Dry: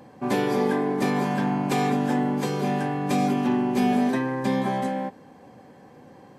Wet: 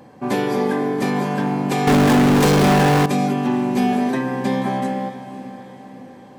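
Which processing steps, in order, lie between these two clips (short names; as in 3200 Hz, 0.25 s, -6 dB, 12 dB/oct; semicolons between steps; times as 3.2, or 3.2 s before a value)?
diffused feedback echo 0.511 s, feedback 51%, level -13.5 dB; 1.87–3.06 power-law curve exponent 0.35; gain +3 dB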